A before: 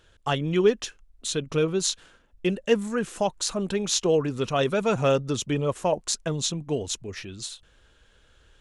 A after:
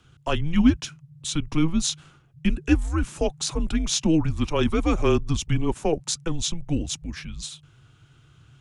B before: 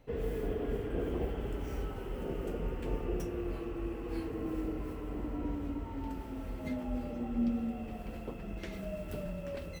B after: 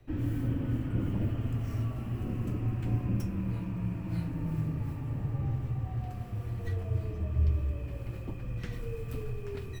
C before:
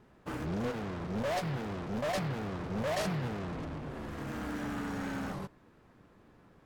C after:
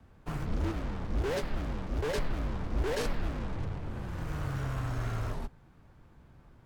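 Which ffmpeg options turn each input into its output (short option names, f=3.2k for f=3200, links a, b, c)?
-filter_complex "[0:a]afreqshift=-160,acrossover=split=220|2500[a][b][c];[a]acontrast=29[d];[d][b][c]amix=inputs=3:normalize=0"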